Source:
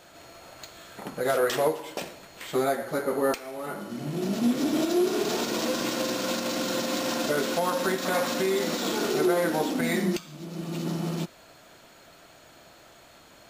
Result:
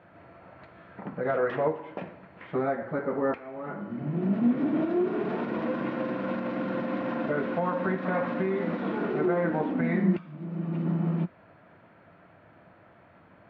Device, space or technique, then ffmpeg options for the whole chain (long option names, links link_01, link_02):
bass cabinet: -af "highpass=78,equalizer=frequency=100:width_type=q:width=4:gain=8,equalizer=frequency=180:width_type=q:width=4:gain=6,equalizer=frequency=390:width_type=q:width=4:gain=-3,equalizer=frequency=1000:width_type=q:width=4:gain=3,lowpass=frequency=2000:width=0.5412,lowpass=frequency=2000:width=1.3066,equalizer=frequency=990:width_type=o:width=1.6:gain=-4"